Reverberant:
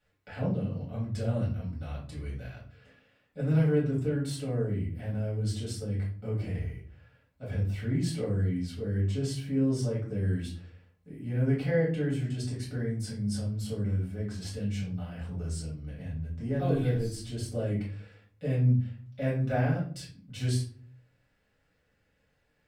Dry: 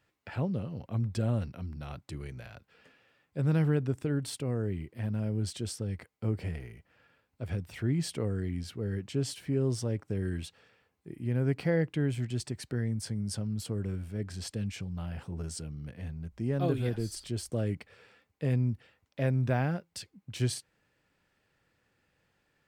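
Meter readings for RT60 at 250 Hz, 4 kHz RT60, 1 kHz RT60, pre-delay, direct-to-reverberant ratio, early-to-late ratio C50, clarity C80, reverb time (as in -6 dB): 0.65 s, 0.30 s, 0.40 s, 4 ms, -7.5 dB, 6.0 dB, 11.5 dB, 0.45 s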